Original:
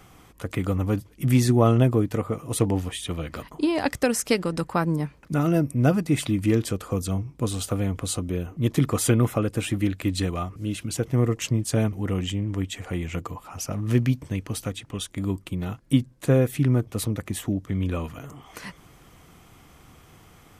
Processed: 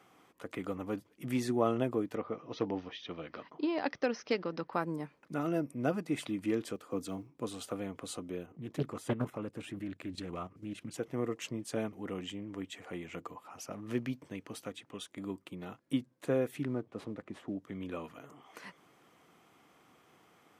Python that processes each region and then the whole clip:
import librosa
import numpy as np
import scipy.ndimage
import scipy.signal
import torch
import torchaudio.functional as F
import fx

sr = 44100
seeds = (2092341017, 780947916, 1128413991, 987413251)

y = fx.chain(x, sr, fx.steep_lowpass(hz=6000.0, slope=96),
    fx.clip_hard(threshold_db=-10.5), at=(2.15, 4.73))
y = fx.chain(y, sr, fx.block_float(bits=7),
    fx.peak_eq(hz=290.0, db=6.0, octaves=0.38),
    fx.band_widen(depth_pct=40), at=(6.76, 7.37))
y = fx.chain(y, sr, fx.low_shelf(hz=200.0, db=10.5),
    fx.level_steps(step_db=12),
    fx.doppler_dist(depth_ms=0.71), at=(8.46, 10.94))
y = fx.chain(y, sr, fx.cvsd(bps=64000),
    fx.lowpass(hz=1400.0, slope=6), at=(16.65, 17.55))
y = scipy.signal.sosfilt(scipy.signal.butter(2, 260.0, 'highpass', fs=sr, output='sos'), y)
y = fx.high_shelf(y, sr, hz=4600.0, db=-9.0)
y = F.gain(torch.from_numpy(y), -8.0).numpy()